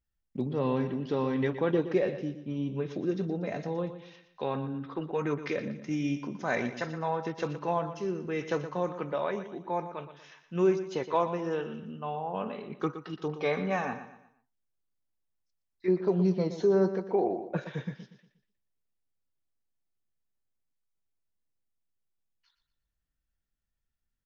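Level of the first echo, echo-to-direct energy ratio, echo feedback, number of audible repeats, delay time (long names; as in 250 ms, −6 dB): −11.5 dB, −11.0 dB, 38%, 3, 119 ms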